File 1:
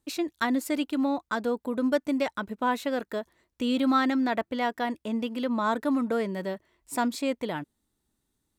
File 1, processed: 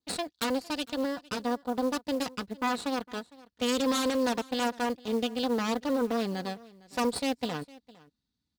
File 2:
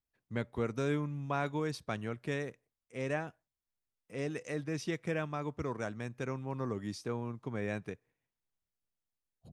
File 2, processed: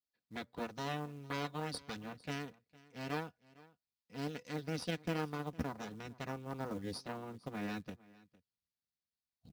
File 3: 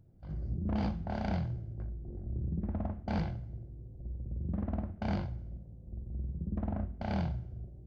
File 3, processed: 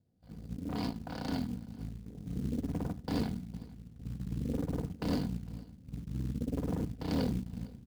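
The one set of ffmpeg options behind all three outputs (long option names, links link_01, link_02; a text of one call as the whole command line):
ffmpeg -i in.wav -filter_complex "[0:a]asubboost=boost=4:cutoff=190,lowpass=frequency=4600:width_type=q:width=3.6,aeval=exprs='0.335*(cos(1*acos(clip(val(0)/0.335,-1,1)))-cos(1*PI/2))+0.0133*(cos(3*acos(clip(val(0)/0.335,-1,1)))-cos(3*PI/2))+0.0119*(cos(4*acos(clip(val(0)/0.335,-1,1)))-cos(4*PI/2))+0.0841*(cos(6*acos(clip(val(0)/0.335,-1,1)))-cos(6*PI/2))+0.168*(cos(8*acos(clip(val(0)/0.335,-1,1)))-cos(8*PI/2))':channel_layout=same,highpass=92,aecho=1:1:4.1:0.42,adynamicequalizer=threshold=0.00282:dfrequency=2200:dqfactor=2.8:tfrequency=2200:tqfactor=2.8:attack=5:release=100:ratio=0.375:range=2.5:mode=cutabove:tftype=bell,asplit=2[link_01][link_02];[link_02]aecho=0:1:457:0.0794[link_03];[link_01][link_03]amix=inputs=2:normalize=0,acrusher=bits=6:mode=log:mix=0:aa=0.000001,volume=-8.5dB" out.wav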